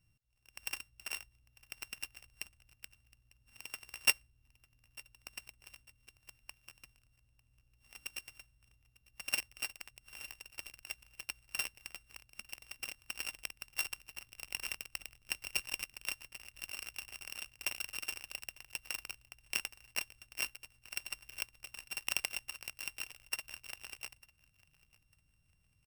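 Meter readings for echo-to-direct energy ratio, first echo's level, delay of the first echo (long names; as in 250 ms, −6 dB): −23.0 dB, −23.5 dB, 899 ms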